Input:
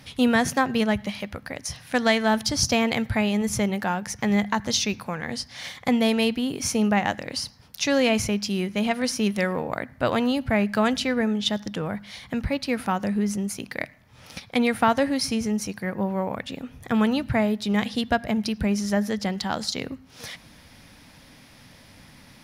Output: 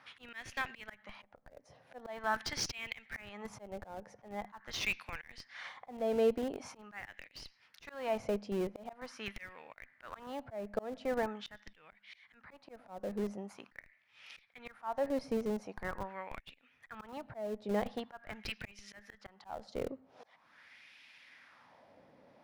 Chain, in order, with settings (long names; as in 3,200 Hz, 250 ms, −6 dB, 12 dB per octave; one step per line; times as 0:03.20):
auto-filter band-pass sine 0.44 Hz 520–2,600 Hz
in parallel at −9 dB: comparator with hysteresis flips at −35 dBFS
on the sum: volume swells 392 ms